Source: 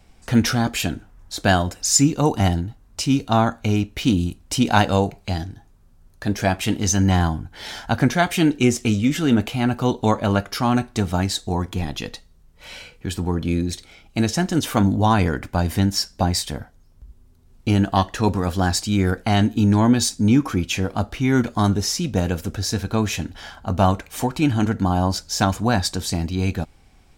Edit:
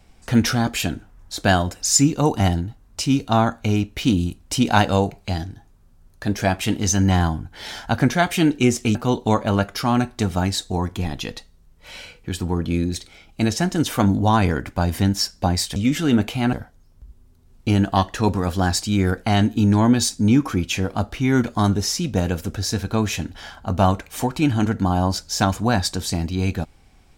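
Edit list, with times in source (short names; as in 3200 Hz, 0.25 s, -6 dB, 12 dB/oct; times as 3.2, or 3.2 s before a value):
8.95–9.72 move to 16.53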